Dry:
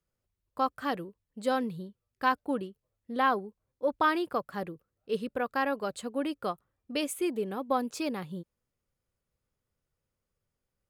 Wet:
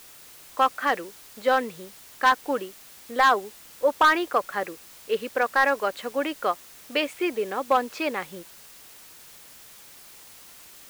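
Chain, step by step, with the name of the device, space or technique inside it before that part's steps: drive-through speaker (BPF 440–3300 Hz; bell 2000 Hz +6 dB 0.77 oct; hard clip -20 dBFS, distortion -13 dB; white noise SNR 21 dB); gain +8.5 dB

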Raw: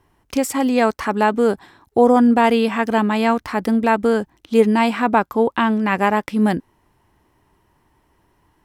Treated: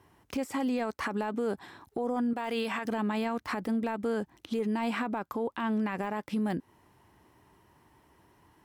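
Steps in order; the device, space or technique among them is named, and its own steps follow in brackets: 2.33–2.85 low shelf 490 Hz -10 dB; podcast mastering chain (HPF 74 Hz; de-esser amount 65%; compressor 3:1, threshold -25 dBFS, peak gain reduction 12.5 dB; limiter -23 dBFS, peak gain reduction 10 dB; MP3 112 kbps 48000 Hz)

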